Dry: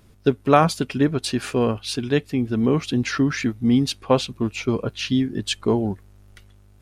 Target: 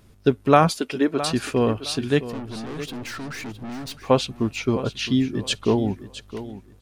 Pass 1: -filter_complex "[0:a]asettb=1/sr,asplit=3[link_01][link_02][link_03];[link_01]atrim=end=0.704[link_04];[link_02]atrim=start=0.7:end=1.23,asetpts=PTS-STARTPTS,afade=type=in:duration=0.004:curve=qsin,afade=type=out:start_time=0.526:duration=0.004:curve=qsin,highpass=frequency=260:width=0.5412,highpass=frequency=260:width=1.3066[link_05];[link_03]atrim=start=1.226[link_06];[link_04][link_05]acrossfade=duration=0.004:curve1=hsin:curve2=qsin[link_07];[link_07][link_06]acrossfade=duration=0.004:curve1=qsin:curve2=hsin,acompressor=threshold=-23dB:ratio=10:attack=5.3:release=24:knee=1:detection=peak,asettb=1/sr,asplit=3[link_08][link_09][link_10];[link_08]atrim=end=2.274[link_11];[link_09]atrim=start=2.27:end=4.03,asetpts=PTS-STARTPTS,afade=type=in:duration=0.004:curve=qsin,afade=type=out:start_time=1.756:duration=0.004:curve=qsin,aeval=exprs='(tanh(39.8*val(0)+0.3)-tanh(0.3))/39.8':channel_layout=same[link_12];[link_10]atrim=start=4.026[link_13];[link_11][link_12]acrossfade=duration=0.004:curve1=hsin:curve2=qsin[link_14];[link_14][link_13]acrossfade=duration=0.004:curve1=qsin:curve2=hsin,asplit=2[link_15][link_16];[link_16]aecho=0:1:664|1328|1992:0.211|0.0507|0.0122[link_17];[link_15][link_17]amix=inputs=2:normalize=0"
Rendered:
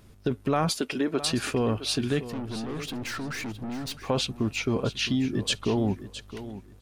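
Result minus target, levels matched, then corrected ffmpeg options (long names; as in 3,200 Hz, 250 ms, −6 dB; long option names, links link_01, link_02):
downward compressor: peak gain reduction +12.5 dB
-filter_complex "[0:a]asettb=1/sr,asplit=3[link_01][link_02][link_03];[link_01]atrim=end=0.704[link_04];[link_02]atrim=start=0.7:end=1.23,asetpts=PTS-STARTPTS,afade=type=in:duration=0.004:curve=qsin,afade=type=out:start_time=0.526:duration=0.004:curve=qsin,highpass=frequency=260:width=0.5412,highpass=frequency=260:width=1.3066[link_05];[link_03]atrim=start=1.226[link_06];[link_04][link_05]acrossfade=duration=0.004:curve1=hsin:curve2=qsin[link_07];[link_07][link_06]acrossfade=duration=0.004:curve1=qsin:curve2=hsin,asettb=1/sr,asplit=3[link_08][link_09][link_10];[link_08]atrim=end=2.274[link_11];[link_09]atrim=start=2.27:end=4.03,asetpts=PTS-STARTPTS,afade=type=in:duration=0.004:curve=qsin,afade=type=out:start_time=1.756:duration=0.004:curve=qsin,aeval=exprs='(tanh(39.8*val(0)+0.3)-tanh(0.3))/39.8':channel_layout=same[link_12];[link_10]atrim=start=4.026[link_13];[link_11][link_12]acrossfade=duration=0.004:curve1=hsin:curve2=qsin[link_14];[link_14][link_13]acrossfade=duration=0.004:curve1=qsin:curve2=hsin,asplit=2[link_15][link_16];[link_16]aecho=0:1:664|1328|1992:0.211|0.0507|0.0122[link_17];[link_15][link_17]amix=inputs=2:normalize=0"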